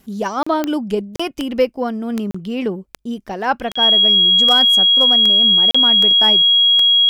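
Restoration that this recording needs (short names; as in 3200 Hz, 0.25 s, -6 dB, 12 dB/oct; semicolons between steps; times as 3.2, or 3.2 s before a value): clip repair -6 dBFS; de-click; notch 3300 Hz, Q 30; interpolate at 0.43/1.16/2.31/3.72/5.71, 35 ms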